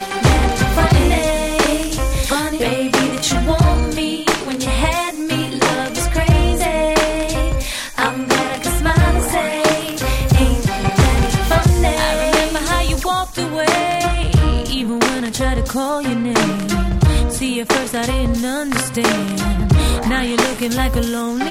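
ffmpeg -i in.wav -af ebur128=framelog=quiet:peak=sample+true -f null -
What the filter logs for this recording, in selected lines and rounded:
Integrated loudness:
  I:         -16.9 LUFS
  Threshold: -26.9 LUFS
Loudness range:
  LRA:         2.0 LU
  Threshold: -37.0 LUFS
  LRA low:   -17.7 LUFS
  LRA high:  -15.7 LUFS
Sample peak:
  Peak:       -2.1 dBFS
True peak:
  Peak:       -2.1 dBFS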